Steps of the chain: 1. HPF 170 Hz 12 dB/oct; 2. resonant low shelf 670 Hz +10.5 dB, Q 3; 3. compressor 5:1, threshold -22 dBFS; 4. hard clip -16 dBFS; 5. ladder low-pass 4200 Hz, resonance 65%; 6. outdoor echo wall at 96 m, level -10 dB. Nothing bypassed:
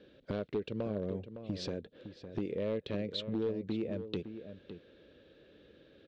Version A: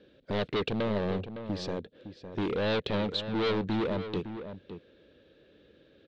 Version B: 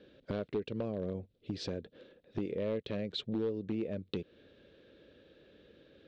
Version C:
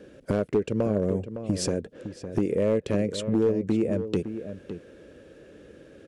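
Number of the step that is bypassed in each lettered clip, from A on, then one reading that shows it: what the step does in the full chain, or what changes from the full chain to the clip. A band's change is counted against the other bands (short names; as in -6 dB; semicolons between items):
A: 3, mean gain reduction 10.0 dB; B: 6, echo-to-direct -11.5 dB to none; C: 5, 4 kHz band -7.5 dB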